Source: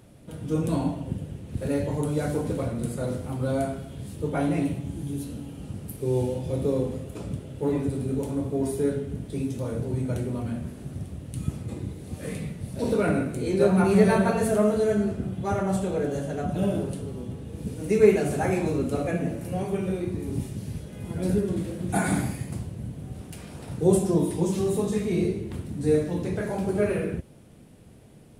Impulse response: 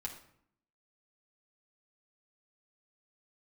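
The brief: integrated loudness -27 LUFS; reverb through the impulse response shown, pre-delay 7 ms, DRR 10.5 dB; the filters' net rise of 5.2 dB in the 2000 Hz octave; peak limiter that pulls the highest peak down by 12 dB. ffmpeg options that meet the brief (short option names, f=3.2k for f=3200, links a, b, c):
-filter_complex "[0:a]equalizer=f=2k:t=o:g=7,alimiter=limit=-16.5dB:level=0:latency=1,asplit=2[a][b];[1:a]atrim=start_sample=2205,adelay=7[c];[b][c]afir=irnorm=-1:irlink=0,volume=-9.5dB[d];[a][d]amix=inputs=2:normalize=0,volume=1dB"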